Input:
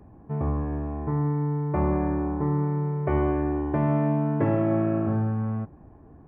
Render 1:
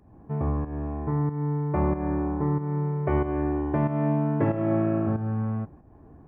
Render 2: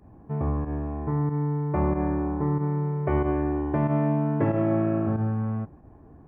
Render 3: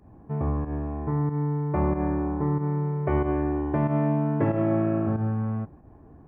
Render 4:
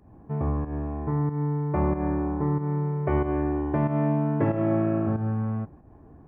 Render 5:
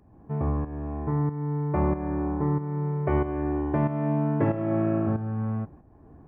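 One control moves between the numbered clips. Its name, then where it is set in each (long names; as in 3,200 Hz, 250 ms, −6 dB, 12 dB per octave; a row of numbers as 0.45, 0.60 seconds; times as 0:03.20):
fake sidechain pumping, release: 274, 75, 110, 175, 487 milliseconds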